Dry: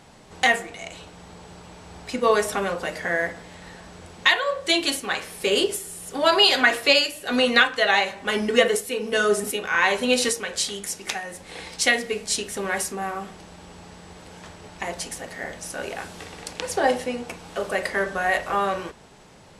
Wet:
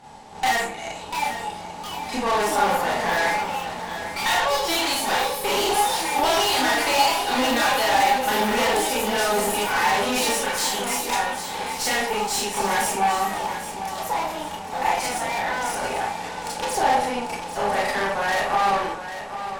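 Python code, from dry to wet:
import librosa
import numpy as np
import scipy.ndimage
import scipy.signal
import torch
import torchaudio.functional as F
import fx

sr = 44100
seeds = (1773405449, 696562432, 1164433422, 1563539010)

y = fx.rev_schroeder(x, sr, rt60_s=0.34, comb_ms=27, drr_db=-6.0)
y = fx.tube_stage(y, sr, drive_db=22.0, bias=0.75)
y = fx.echo_pitch(y, sr, ms=782, semitones=4, count=3, db_per_echo=-6.0)
y = fx.peak_eq(y, sr, hz=850.0, db=14.5, octaves=0.3)
y = fx.echo_feedback(y, sr, ms=795, feedback_pct=38, wet_db=-11.0)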